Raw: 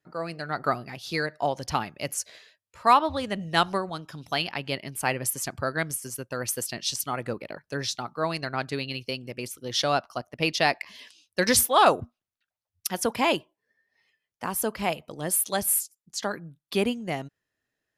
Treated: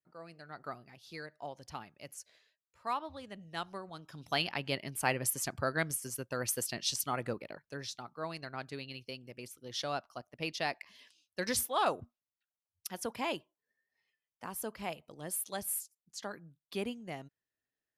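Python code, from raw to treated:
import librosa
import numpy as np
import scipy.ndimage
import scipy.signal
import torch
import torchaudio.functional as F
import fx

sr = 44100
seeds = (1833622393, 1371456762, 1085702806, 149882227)

y = fx.gain(x, sr, db=fx.line((3.71, -17.0), (4.35, -4.5), (7.24, -4.5), (7.81, -12.0)))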